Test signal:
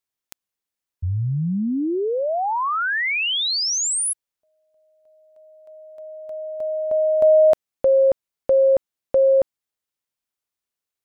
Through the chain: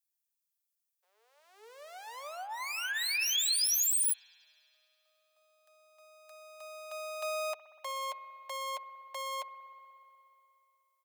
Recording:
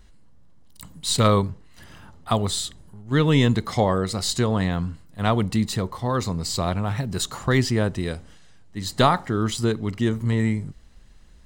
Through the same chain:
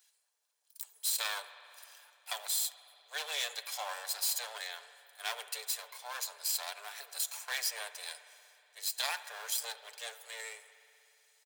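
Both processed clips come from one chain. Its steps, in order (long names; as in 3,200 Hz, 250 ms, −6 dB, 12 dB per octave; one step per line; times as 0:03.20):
lower of the sound and its delayed copy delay 1.2 ms
Butterworth high-pass 420 Hz 96 dB per octave
first difference
comb filter 6.8 ms, depth 34%
brickwall limiter −21.5 dBFS
spring reverb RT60 2.9 s, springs 60 ms, chirp 50 ms, DRR 12 dB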